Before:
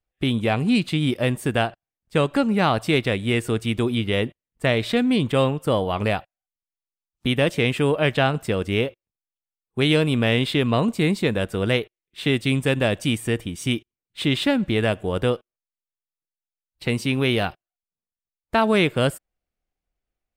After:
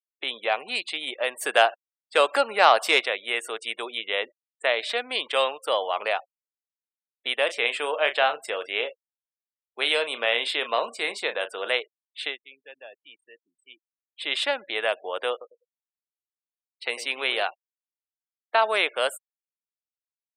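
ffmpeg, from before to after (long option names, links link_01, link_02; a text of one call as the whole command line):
ffmpeg -i in.wav -filter_complex "[0:a]asplit=3[link_01][link_02][link_03];[link_01]afade=type=out:start_time=1.4:duration=0.02[link_04];[link_02]acontrast=58,afade=type=in:start_time=1.4:duration=0.02,afade=type=out:start_time=3.04:duration=0.02[link_05];[link_03]afade=type=in:start_time=3.04:duration=0.02[link_06];[link_04][link_05][link_06]amix=inputs=3:normalize=0,asettb=1/sr,asplit=3[link_07][link_08][link_09];[link_07]atrim=end=5.154[link_10];[link_08]atrim=start=5.15:end=5.88,asetpts=PTS-STARTPTS,afade=type=in:duration=0.004:curve=qsin,afade=type=out:start_time=0.726:duration=0.004:curve=qsin,equalizer=frequency=3300:width_type=o:width=1.6:gain=4.5[link_11];[link_09]atrim=start=5.876[link_12];[link_10][link_11]acrossfade=duration=0.004:curve1=hsin:curve2=qsin[link_13];[link_13][link_12]acrossfade=duration=0.004:curve1=qsin:curve2=hsin,asettb=1/sr,asplit=3[link_14][link_15][link_16];[link_14]atrim=end=7.454[link_17];[link_15]atrim=start=7.45:end=11.72,asetpts=PTS-STARTPTS,afade=type=in:duration=0.004:curve=qsin,afade=type=out:start_time=4.266:duration=0.004:curve=qsin,asplit=2[link_18][link_19];[link_19]adelay=34,volume=-10.5dB[link_20];[link_18][link_20]amix=inputs=2:normalize=0,atrim=end_sample=188307[link_21];[link_16]atrim=start=11.716[link_22];[link_17][link_21]acrossfade=duration=0.004:curve1=hsin:curve2=qsin[link_23];[link_23][link_22]acrossfade=duration=0.004:curve1=qsin:curve2=hsin,asettb=1/sr,asplit=3[link_24][link_25][link_26];[link_24]atrim=end=15.314[link_27];[link_25]atrim=start=15.31:end=17.44,asetpts=PTS-STARTPTS,afade=type=in:duration=0.004:curve=qsin,afade=type=out:start_time=2.126:duration=0.004:curve=qsin,asplit=2[link_28][link_29];[link_29]adelay=100,lowpass=frequency=1500:poles=1,volume=-10.5dB,asplit=2[link_30][link_31];[link_31]adelay=100,lowpass=frequency=1500:poles=1,volume=0.22,asplit=2[link_32][link_33];[link_33]adelay=100,lowpass=frequency=1500:poles=1,volume=0.22[link_34];[link_28][link_30][link_32][link_34]amix=inputs=4:normalize=0,atrim=end_sample=93933[link_35];[link_26]atrim=start=17.436[link_36];[link_27][link_35]acrossfade=duration=0.004:curve1=hsin:curve2=qsin[link_37];[link_37][link_36]acrossfade=duration=0.004:curve1=qsin:curve2=hsin,asplit=3[link_38][link_39][link_40];[link_38]atrim=end=12.37,asetpts=PTS-STARTPTS,afade=type=out:start_time=12.24:duration=0.13:silence=0.105925[link_41];[link_39]atrim=start=12.37:end=14.16,asetpts=PTS-STARTPTS,volume=-19.5dB[link_42];[link_40]atrim=start=14.16,asetpts=PTS-STARTPTS,afade=type=in:duration=0.13:silence=0.105925[link_43];[link_41][link_42][link_43]concat=n=3:v=0:a=1,afftfilt=real='re*gte(hypot(re,im),0.00891)':imag='im*gte(hypot(re,im),0.00891)':win_size=1024:overlap=0.75,highpass=frequency=560:width=0.5412,highpass=frequency=560:width=1.3066" out.wav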